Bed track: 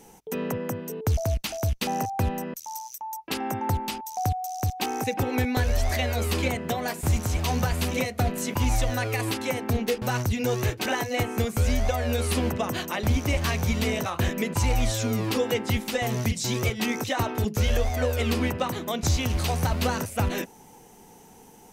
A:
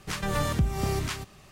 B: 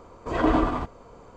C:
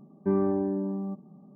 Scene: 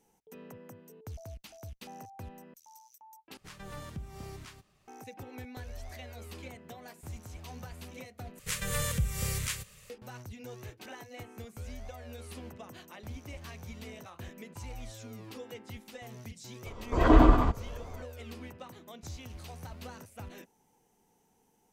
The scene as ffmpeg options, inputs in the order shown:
ffmpeg -i bed.wav -i cue0.wav -i cue1.wav -filter_complex "[1:a]asplit=2[link_01][link_02];[0:a]volume=-19.5dB[link_03];[link_02]firequalizer=gain_entry='entry(110,0);entry(210,-6);entry(340,-21);entry(490,7);entry(700,-15);entry(990,-6);entry(2000,3);entry(5100,2);entry(7400,10)':delay=0.05:min_phase=1[link_04];[2:a]lowshelf=frequency=98:gain=11[link_05];[link_03]asplit=3[link_06][link_07][link_08];[link_06]atrim=end=3.374[link_09];[link_01]atrim=end=1.51,asetpts=PTS-STARTPTS,volume=-16.5dB[link_10];[link_07]atrim=start=4.876:end=8.394[link_11];[link_04]atrim=end=1.51,asetpts=PTS-STARTPTS,volume=-4dB[link_12];[link_08]atrim=start=9.896[link_13];[link_05]atrim=end=1.36,asetpts=PTS-STARTPTS,volume=-0.5dB,afade=type=in:duration=0.004:curve=hsin,afade=type=out:start_time=1.356:duration=0.004:curve=hsin,adelay=16660[link_14];[link_09][link_10]acrossfade=duration=0.004:curve1=hsin:curve2=hsin[link_15];[link_15][link_11]acrossfade=duration=0.004:curve1=hsin:curve2=hsin[link_16];[link_16][link_12]acrossfade=duration=0.004:curve1=hsin:curve2=hsin[link_17];[link_17][link_13]acrossfade=duration=0.004:curve1=hsin:curve2=hsin[link_18];[link_18][link_14]amix=inputs=2:normalize=0" out.wav

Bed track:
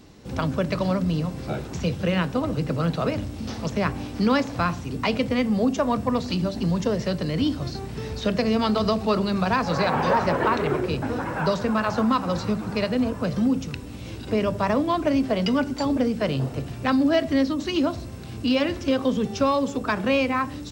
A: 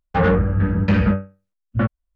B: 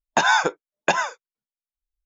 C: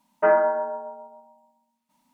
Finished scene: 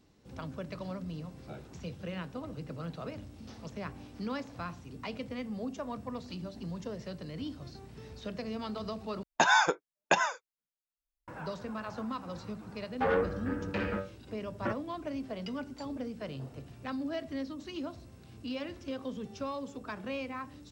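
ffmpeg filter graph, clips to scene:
ffmpeg -i bed.wav -i cue0.wav -i cue1.wav -filter_complex "[0:a]volume=-16dB[link_01];[1:a]lowshelf=frequency=240:width_type=q:width=1.5:gain=-10.5[link_02];[link_01]asplit=2[link_03][link_04];[link_03]atrim=end=9.234[link_05];[2:a]atrim=end=2.05,asetpts=PTS-STARTPTS,volume=-6dB[link_06];[link_04]atrim=start=11.276[link_07];[link_02]atrim=end=2.15,asetpts=PTS-STARTPTS,volume=-10.5dB,afade=type=in:duration=0.004:curve=hsin,afade=type=out:start_time=2.146:duration=0.004:curve=hsin,adelay=12860[link_08];[link_05][link_06]acrossfade=duration=0.004:curve1=hsin:curve2=hsin[link_09];[link_09][link_07]acrossfade=duration=0.004:curve1=hsin:curve2=hsin[link_10];[link_10][link_08]amix=inputs=2:normalize=0" out.wav

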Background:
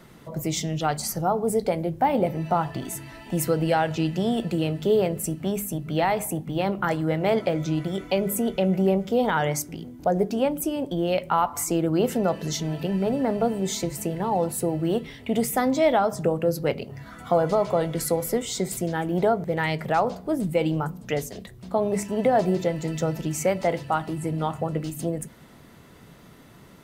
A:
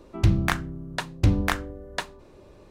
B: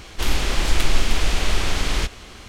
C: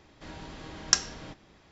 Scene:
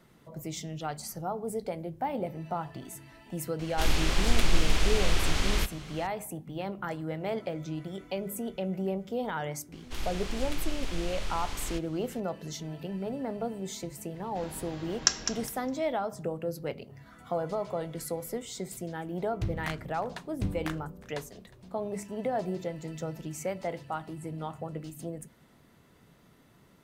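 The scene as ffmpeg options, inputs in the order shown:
ffmpeg -i bed.wav -i cue0.wav -i cue1.wav -i cue2.wav -filter_complex "[2:a]asplit=2[link_01][link_02];[0:a]volume=-10.5dB[link_03];[3:a]aecho=1:1:205|410|615:0.355|0.0674|0.0128[link_04];[1:a]aecho=1:1:360:0.0891[link_05];[link_01]atrim=end=2.48,asetpts=PTS-STARTPTS,volume=-5.5dB,afade=type=in:duration=0.004:curve=hsin,afade=type=out:start_time=2.476:duration=0.004:curve=hsin,adelay=3590[link_06];[link_02]atrim=end=2.48,asetpts=PTS-STARTPTS,volume=-15dB,afade=type=in:duration=0.004:curve=hsin,afade=type=out:start_time=2.476:duration=0.004:curve=hsin,adelay=9720[link_07];[link_04]atrim=end=1.71,asetpts=PTS-STARTPTS,volume=-1.5dB,afade=type=in:duration=0.004:curve=hsin,afade=type=out:start_time=1.706:duration=0.004:curve=hsin,adelay=14140[link_08];[link_05]atrim=end=2.7,asetpts=PTS-STARTPTS,volume=-13dB,afade=type=in:duration=0.004:curve=hsin,afade=type=out:start_time=2.696:duration=0.004:curve=hsin,adelay=19180[link_09];[link_03][link_06][link_07][link_08][link_09]amix=inputs=5:normalize=0" out.wav

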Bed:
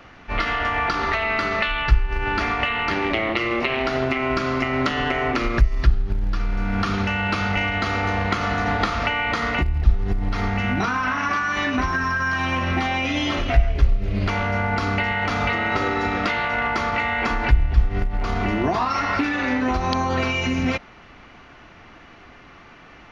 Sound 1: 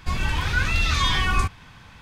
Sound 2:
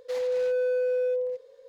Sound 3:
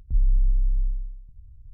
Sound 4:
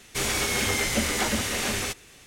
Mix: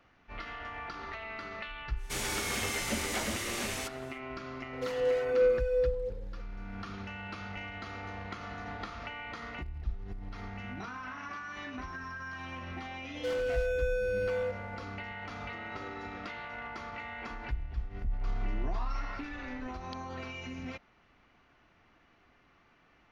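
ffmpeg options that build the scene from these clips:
ffmpeg -i bed.wav -i cue0.wav -i cue1.wav -i cue2.wav -i cue3.wav -filter_complex "[2:a]asplit=2[link_01][link_02];[0:a]volume=-19dB[link_03];[link_01]aphaser=in_gain=1:out_gain=1:delay=1.8:decay=0.55:speed=1.4:type=sinusoidal[link_04];[link_02]asoftclip=type=hard:threshold=-30dB[link_05];[3:a]acompressor=threshold=-28dB:ratio=6:attack=3.2:release=140:knee=1:detection=peak[link_06];[4:a]atrim=end=2.26,asetpts=PTS-STARTPTS,volume=-8.5dB,afade=type=in:duration=0.1,afade=type=out:start_time=2.16:duration=0.1,adelay=1950[link_07];[link_04]atrim=end=1.68,asetpts=PTS-STARTPTS,volume=-4dB,afade=type=in:duration=0.004:curve=hsin,afade=type=out:start_time=1.676:duration=0.004:curve=hsin,adelay=208593S[link_08];[link_05]atrim=end=1.68,asetpts=PTS-STARTPTS,volume=-0.5dB,afade=type=in:duration=0.004:curve=hsin,afade=type=out:start_time=1.676:duration=0.004:curve=hsin,adelay=13150[link_09];[link_06]atrim=end=1.73,asetpts=PTS-STARTPTS,volume=-2dB,afade=type=in:duration=0.004:curve=hsin,afade=type=out:start_time=1.726:duration=0.004:curve=hsin,adelay=17940[link_10];[link_03][link_07][link_08][link_09][link_10]amix=inputs=5:normalize=0" out.wav

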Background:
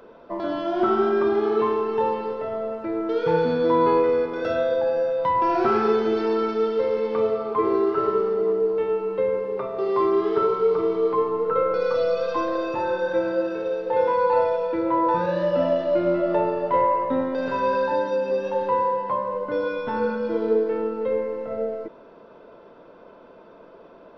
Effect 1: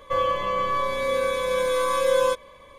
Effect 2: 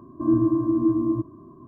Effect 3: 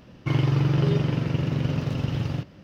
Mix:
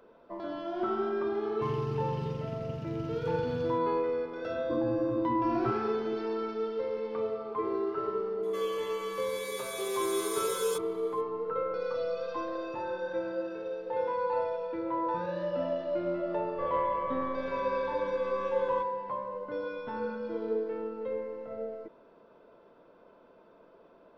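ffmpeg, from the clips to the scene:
ffmpeg -i bed.wav -i cue0.wav -i cue1.wav -i cue2.wav -filter_complex "[1:a]asplit=2[link_01][link_02];[0:a]volume=-10.5dB[link_03];[3:a]equalizer=frequency=920:width_type=o:width=1.7:gain=-14[link_04];[2:a]acompressor=threshold=-23dB:ratio=6:attack=3.2:release=140:knee=1:detection=peak[link_05];[link_01]aderivative[link_06];[link_02]lowpass=1800[link_07];[link_04]atrim=end=2.63,asetpts=PTS-STARTPTS,volume=-13dB,afade=type=in:duration=0.004:curve=hsin,afade=type=out:start_time=2.626:duration=0.004:curve=hsin,adelay=1350[link_08];[link_05]atrim=end=1.67,asetpts=PTS-STARTPTS,volume=-5dB,afade=type=in:duration=0.004:curve=hsin,afade=type=out:start_time=1.666:duration=0.004:curve=hsin,adelay=4500[link_09];[link_06]atrim=end=2.78,asetpts=PTS-STARTPTS,volume=-0.5dB,afade=type=in:duration=0.004:curve=hsin,afade=type=out:start_time=2.776:duration=0.004:curve=hsin,adelay=8430[link_10];[link_07]atrim=end=2.78,asetpts=PTS-STARTPTS,volume=-11dB,afade=type=in:duration=0.004:curve=hsin,afade=type=out:start_time=2.776:duration=0.004:curve=hsin,adelay=16480[link_11];[link_03][link_08][link_09][link_10][link_11]amix=inputs=5:normalize=0" out.wav

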